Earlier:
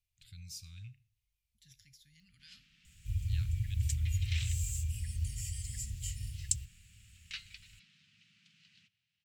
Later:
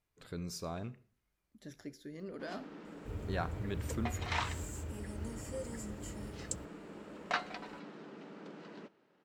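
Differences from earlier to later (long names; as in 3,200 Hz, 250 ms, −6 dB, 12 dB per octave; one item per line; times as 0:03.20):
second sound −9.0 dB
master: remove elliptic band-stop filter 110–2,600 Hz, stop band 80 dB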